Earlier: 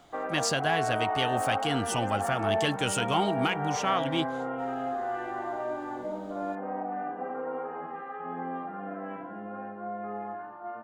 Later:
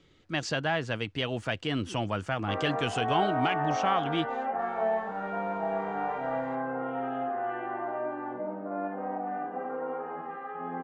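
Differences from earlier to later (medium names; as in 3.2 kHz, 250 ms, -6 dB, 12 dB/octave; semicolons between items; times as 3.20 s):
speech: add distance through air 130 m; background: entry +2.35 s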